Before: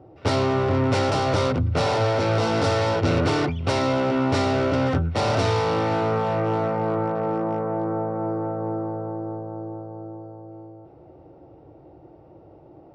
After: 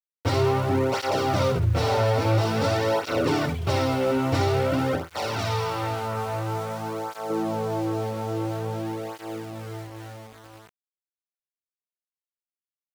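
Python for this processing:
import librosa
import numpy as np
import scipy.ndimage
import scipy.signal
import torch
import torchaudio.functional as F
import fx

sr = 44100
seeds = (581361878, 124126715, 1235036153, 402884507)

y = fx.room_early_taps(x, sr, ms=(53, 63), db=(-16.5, -6.5))
y = np.where(np.abs(y) >= 10.0 ** (-33.0 / 20.0), y, 0.0)
y = fx.peak_eq(y, sr, hz=270.0, db=-8.0, octaves=3.0, at=(5.11, 7.3))
y = fx.flanger_cancel(y, sr, hz=0.49, depth_ms=6.6)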